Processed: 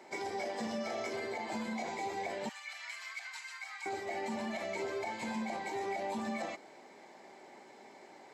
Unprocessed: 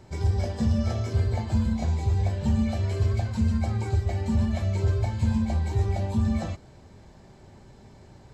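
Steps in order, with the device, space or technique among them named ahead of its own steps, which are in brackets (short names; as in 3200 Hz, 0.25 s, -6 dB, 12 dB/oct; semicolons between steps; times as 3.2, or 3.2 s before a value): laptop speaker (HPF 280 Hz 24 dB/oct; bell 790 Hz +6 dB 0.6 oct; bell 2100 Hz +11 dB 0.33 oct; limiter -27.5 dBFS, peak gain reduction 11 dB); 2.49–3.86 inverse Chebyshev high-pass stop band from 270 Hz, stop band 70 dB; gain -1.5 dB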